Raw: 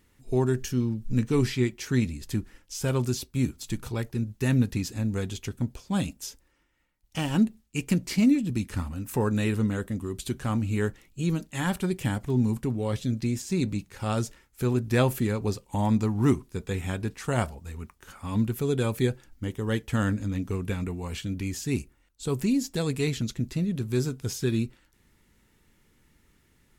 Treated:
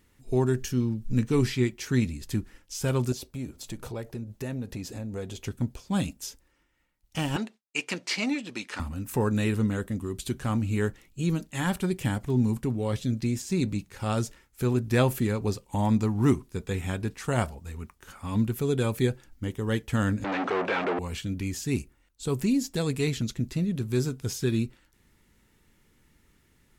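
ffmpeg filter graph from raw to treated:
ffmpeg -i in.wav -filter_complex "[0:a]asettb=1/sr,asplit=3[link_01][link_02][link_03];[link_01]atrim=end=3.124[link_04];[link_02]atrim=start=3.12:end=5.47,asetpts=PTS-STARTPTS,afade=type=in:duration=0.004:curve=qsin,afade=type=out:start_time=2.346:duration=0.004:curve=qsin,acompressor=threshold=-37dB:ratio=2.5:attack=3.2:release=140:knee=1:detection=peak,equalizer=frequency=570:width_type=o:width=1.3:gain=9.5[link_05];[link_03]atrim=start=5.466[link_06];[link_04][link_05]acrossfade=duration=0.004:curve1=hsin:curve2=qsin[link_07];[link_07][link_06]acrossfade=duration=0.004:curve1=qsin:curve2=hsin,asettb=1/sr,asplit=3[link_08][link_09][link_10];[link_08]atrim=end=7.364[link_11];[link_09]atrim=start=7.36:end=8.8,asetpts=PTS-STARTPTS,afade=type=in:duration=0.004:curve=qsin,afade=type=out:start_time=1.436:duration=0.004:curve=qsin,agate=range=-33dB:threshold=-46dB:ratio=3:release=100:detection=peak,acontrast=75,highpass=630,lowpass=5400[link_12];[link_10]atrim=start=8.796[link_13];[link_11][link_12]acrossfade=duration=0.004:curve1=hsin:curve2=qsin[link_14];[link_14][link_13]acrossfade=duration=0.004:curve1=qsin:curve2=hsin,asettb=1/sr,asplit=3[link_15][link_16][link_17];[link_15]atrim=end=20.244[link_18];[link_16]atrim=start=20.24:end=20.99,asetpts=PTS-STARTPTS,afade=type=in:duration=0.004:curve=qsin,afade=type=out:start_time=0.746:duration=0.004:curve=qsin,asplit=2[link_19][link_20];[link_20]highpass=frequency=720:poles=1,volume=41dB,asoftclip=type=tanh:threshold=-15dB[link_21];[link_19][link_21]amix=inputs=2:normalize=0,lowpass=frequency=1900:poles=1,volume=-6dB,highpass=430,lowpass=3000[link_22];[link_17]atrim=start=20.986[link_23];[link_18][link_22]acrossfade=duration=0.004:curve1=hsin:curve2=qsin[link_24];[link_24][link_23]acrossfade=duration=0.004:curve1=qsin:curve2=hsin" out.wav

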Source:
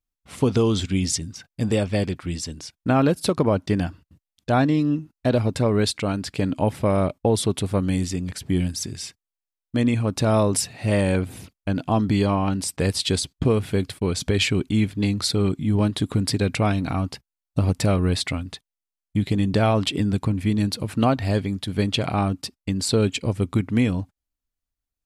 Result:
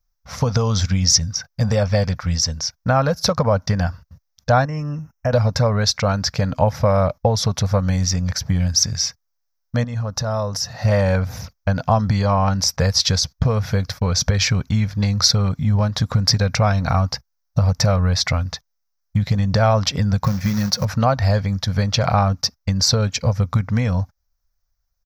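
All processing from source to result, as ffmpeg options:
ffmpeg -i in.wav -filter_complex "[0:a]asettb=1/sr,asplit=3[link_01][link_02][link_03];[link_01]atrim=end=4.654[link_04];[link_02]atrim=start=4.65:end=5.33,asetpts=PTS-STARTPTS,afade=type=in:duration=0.004:curve=qsin,afade=type=out:start_time=0.676:duration=0.004:curve=qsin,acompressor=threshold=-33dB:ratio=1.5:attack=3.2:release=140:knee=1:detection=peak,asuperstop=centerf=4000:order=20:qfactor=1.9[link_05];[link_03]atrim=start=5.326[link_06];[link_04][link_05]acrossfade=duration=0.004:curve1=hsin:curve2=qsin[link_07];[link_07][link_06]acrossfade=duration=0.004:curve1=qsin:curve2=hsin,asettb=1/sr,asplit=3[link_08][link_09][link_10];[link_08]atrim=end=9.844[link_11];[link_09]atrim=start=9.84:end=10.85,asetpts=PTS-STARTPTS,afade=type=in:duration=0.004:curve=qsin,afade=type=out:start_time=1.006:duration=0.004:curve=qsin,bandreject=frequency=2300:width=5.3,acompressor=threshold=-33dB:ratio=2.5:attack=3.2:release=140:knee=1:detection=peak[link_12];[link_10]atrim=start=10.846[link_13];[link_11][link_12]acrossfade=duration=0.004:curve1=hsin:curve2=qsin[link_14];[link_14][link_13]acrossfade=duration=0.004:curve1=qsin:curve2=hsin,asettb=1/sr,asplit=3[link_15][link_16][link_17];[link_15]atrim=end=20.244[link_18];[link_16]atrim=start=20.24:end=20.85,asetpts=PTS-STARTPTS,afade=type=in:duration=0.004:curve=qsin,afade=type=out:start_time=0.606:duration=0.004:curve=qsin,aecho=1:1:5.5:0.49,atrim=end_sample=26901,acrusher=bits=5:mode=log:mix=0:aa=0.000001[link_19];[link_17]atrim=start=20.846[link_20];[link_18][link_19]acrossfade=duration=0.004:curve1=hsin:curve2=qsin[link_21];[link_21][link_20]acrossfade=duration=0.004:curve1=qsin:curve2=hsin,lowshelf=frequency=86:gain=10,acompressor=threshold=-18dB:ratio=6,firequalizer=gain_entry='entry(140,0);entry(230,-6);entry(340,-21);entry(500,3);entry(1500,5);entry(2900,-8);entry(5700,12);entry(8800,-21);entry(13000,4)':delay=0.05:min_phase=1,volume=6dB" out.wav

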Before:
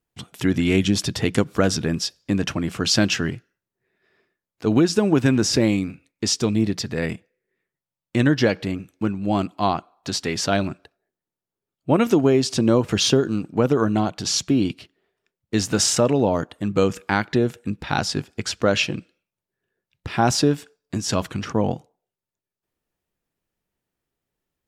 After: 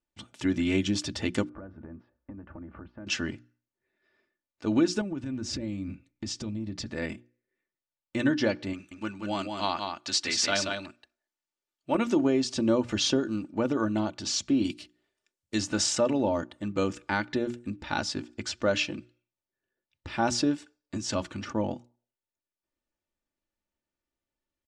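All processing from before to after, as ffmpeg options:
ffmpeg -i in.wav -filter_complex "[0:a]asettb=1/sr,asplit=3[link_01][link_02][link_03];[link_01]atrim=end=1.494[link_04];[link_02]atrim=start=1.49:end=3.07,asetpts=PTS-STARTPTS,afade=type=in:duration=0.004:curve=qsin,afade=type=out:start_time=1.576:duration=0.004:curve=qsin,acompressor=threshold=-31dB:ratio=12:attack=3.2:release=140:knee=1:detection=peak,lowpass=frequency=1500:width=0.5412,lowpass=frequency=1500:width=1.3066,equalizer=frequency=66:width_type=o:width=0.54:gain=14.5[link_05];[link_03]atrim=start=3.066[link_06];[link_04][link_05]acrossfade=duration=0.004:curve1=hsin:curve2=qsin[link_07];[link_07][link_06]acrossfade=duration=0.004:curve1=qsin:curve2=hsin,asettb=1/sr,asplit=3[link_08][link_09][link_10];[link_08]atrim=end=5.014[link_11];[link_09]atrim=start=5.01:end=6.86,asetpts=PTS-STARTPTS,afade=type=in:duration=0.004:curve=qsin,afade=type=out:start_time=1.846:duration=0.004:curve=qsin,bass=frequency=250:gain=11,treble=frequency=4000:gain=-2,acompressor=threshold=-22dB:ratio=8:attack=3.2:release=140:knee=1:detection=peak[link_12];[link_10]atrim=start=6.856[link_13];[link_11][link_12]acrossfade=duration=0.004:curve1=hsin:curve2=qsin[link_14];[link_14][link_13]acrossfade=duration=0.004:curve1=qsin:curve2=hsin,asettb=1/sr,asplit=3[link_15][link_16][link_17];[link_15]atrim=end=8.734[link_18];[link_16]atrim=start=8.73:end=11.95,asetpts=PTS-STARTPTS,afade=type=in:duration=0.004:curve=qsin,afade=type=out:start_time=3.216:duration=0.004:curve=qsin,tiltshelf=frequency=820:gain=-7,aecho=1:1:182:0.562,atrim=end_sample=142002[link_19];[link_17]atrim=start=11.946[link_20];[link_18][link_19]acrossfade=duration=0.004:curve1=hsin:curve2=qsin[link_21];[link_21][link_20]acrossfade=duration=0.004:curve1=qsin:curve2=hsin,asettb=1/sr,asplit=3[link_22][link_23][link_24];[link_22]atrim=end=14.644[link_25];[link_23]atrim=start=14.64:end=15.58,asetpts=PTS-STARTPTS,afade=type=in:duration=0.004:curve=qsin,afade=type=out:start_time=0.936:duration=0.004:curve=qsin,aemphasis=mode=production:type=75fm,bandreject=frequency=60:width_type=h:width=6,bandreject=frequency=120:width_type=h:width=6,bandreject=frequency=180:width_type=h:width=6,bandreject=frequency=240:width_type=h:width=6,bandreject=frequency=300:width_type=h:width=6,bandreject=frequency=360:width_type=h:width=6[link_26];[link_24]atrim=start=15.576[link_27];[link_25][link_26]acrossfade=duration=0.004:curve1=hsin:curve2=qsin[link_28];[link_28][link_27]acrossfade=duration=0.004:curve1=qsin:curve2=hsin,lowpass=frequency=8300:width=0.5412,lowpass=frequency=8300:width=1.3066,bandreject=frequency=60:width_type=h:width=6,bandreject=frequency=120:width_type=h:width=6,bandreject=frequency=180:width_type=h:width=6,bandreject=frequency=240:width_type=h:width=6,bandreject=frequency=300:width_type=h:width=6,bandreject=frequency=360:width_type=h:width=6,aecho=1:1:3.4:0.55,volume=-8dB" out.wav

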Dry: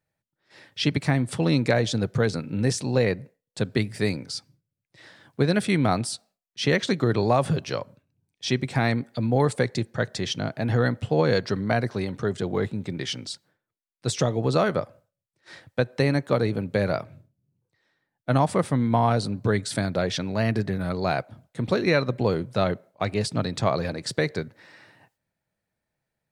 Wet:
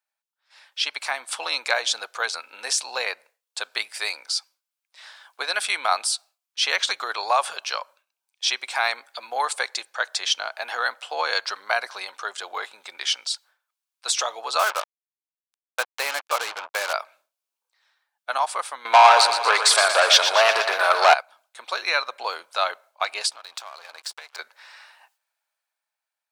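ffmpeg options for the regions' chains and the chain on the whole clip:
ffmpeg -i in.wav -filter_complex "[0:a]asettb=1/sr,asplit=3[link_01][link_02][link_03];[link_01]atrim=end=14.594[link_04];[link_02]atrim=start=14.59:end=16.93,asetpts=PTS-STARTPTS,afade=type=in:duration=0.004:curve=qsin,afade=type=out:start_time=2.336:duration=0.004:curve=qsin,highpass=120,lowpass=3100,acrusher=bits=4:mix=0:aa=0.5[link_05];[link_03]atrim=start=16.926[link_06];[link_04][link_05]acrossfade=duration=0.004:curve1=hsin:curve2=qsin[link_07];[link_07][link_06]acrossfade=duration=0.004:curve1=qsin:curve2=hsin,asettb=1/sr,asplit=3[link_08][link_09][link_10];[link_08]atrim=end=18.854[link_11];[link_09]atrim=start=18.85:end=21.14,asetpts=PTS-STARTPTS,afade=type=in:duration=0.004:curve=qsin,afade=type=out:start_time=2.286:duration=0.004:curve=qsin,equalizer=frequency=460:width_type=o:width=2.1:gain=9.5,asplit=2[link_12][link_13];[link_13]highpass=frequency=720:poles=1,volume=20dB,asoftclip=type=tanh:threshold=-2.5dB[link_14];[link_12][link_14]amix=inputs=2:normalize=0,lowpass=frequency=6900:poles=1,volume=-6dB,aecho=1:1:118|236|354|472|590|708|826:0.376|0.222|0.131|0.0772|0.0455|0.0269|0.0159,atrim=end_sample=100989[link_15];[link_10]atrim=start=21.136[link_16];[link_11][link_15]acrossfade=duration=0.004:curve1=hsin:curve2=qsin[link_17];[link_17][link_16]acrossfade=duration=0.004:curve1=qsin:curve2=hsin,asettb=1/sr,asplit=3[link_18][link_19][link_20];[link_18]atrim=end=23.314[link_21];[link_19]atrim=start=23.31:end=24.39,asetpts=PTS-STARTPTS,afade=type=in:duration=0.004:curve=qsin,afade=type=out:start_time=1.076:duration=0.004:curve=qsin,acompressor=threshold=-33dB:ratio=20:attack=3.2:release=140:knee=1:detection=peak,aeval=exprs='sgn(val(0))*max(abs(val(0))-0.00398,0)':channel_layout=same[link_22];[link_20]atrim=start=24.386[link_23];[link_21][link_22]acrossfade=duration=0.004:curve1=hsin:curve2=qsin[link_24];[link_24][link_23]acrossfade=duration=0.004:curve1=qsin:curve2=hsin,highpass=frequency=860:width=0.5412,highpass=frequency=860:width=1.3066,equalizer=frequency=1900:width_type=o:width=0.23:gain=-8.5,dynaudnorm=framelen=140:gausssize=13:maxgain=8dB" out.wav

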